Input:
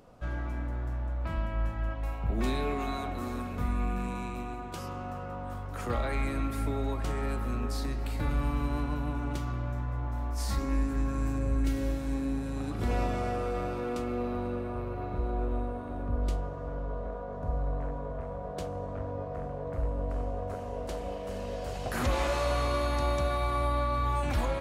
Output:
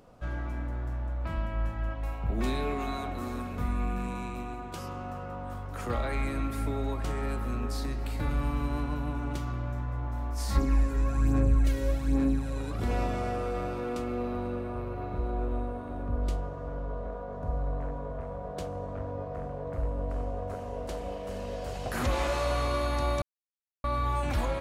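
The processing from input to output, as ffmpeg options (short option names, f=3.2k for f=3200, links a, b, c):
-filter_complex "[0:a]asettb=1/sr,asplit=3[a][b][c];[a]atrim=end=10.554[d];[b]atrim=start=10.55:end=12.8,asetpts=PTS-STARTPTS,afade=t=in:d=0.004:c=qsin,afade=t=out:st=2.246:d=0.004:c=qsin,aphaser=in_gain=1:out_gain=1:delay=2.1:decay=0.53:speed=1.2:type=sinusoidal[e];[c]atrim=start=12.796[f];[d][e]acrossfade=d=0.004:c1=hsin:c2=qsin[g];[g][f]acrossfade=d=0.004:c1=qsin:c2=hsin,asplit=3[h][i][j];[h]atrim=end=23.22,asetpts=PTS-STARTPTS,afade=t=out:st=23.216:d=0.004:c=hsin[k];[i]atrim=start=23.22:end=23.84,asetpts=PTS-STARTPTS,volume=0[l];[j]atrim=start=23.84,asetpts=PTS-STARTPTS,afade=t=in:d=0.004:c=hsin[m];[k][l][m]concat=n=3:v=0:a=1"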